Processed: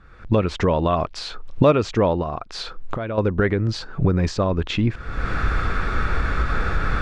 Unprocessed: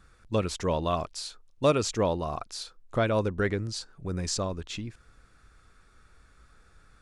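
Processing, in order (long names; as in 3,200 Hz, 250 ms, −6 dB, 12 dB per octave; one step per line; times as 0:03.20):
camcorder AGC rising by 46 dB per second
low-pass filter 2,600 Hz 12 dB per octave
0:02.21–0:03.18: downward compressor 6 to 1, threshold −31 dBFS, peak gain reduction 11.5 dB
level +7 dB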